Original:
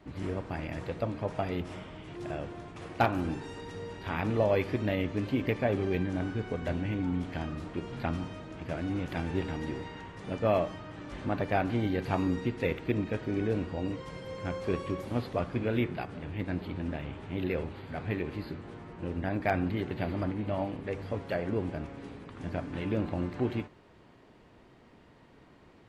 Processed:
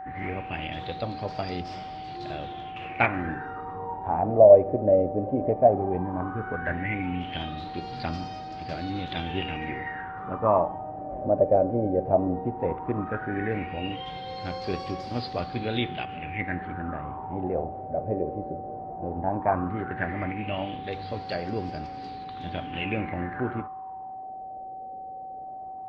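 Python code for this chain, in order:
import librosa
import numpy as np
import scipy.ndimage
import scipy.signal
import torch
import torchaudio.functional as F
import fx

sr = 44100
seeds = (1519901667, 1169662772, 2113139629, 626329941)

y = fx.filter_lfo_lowpass(x, sr, shape='sine', hz=0.15, low_hz=560.0, high_hz=4900.0, q=7.5)
y = y + 10.0 ** (-36.0 / 20.0) * np.sin(2.0 * np.pi * 760.0 * np.arange(len(y)) / sr)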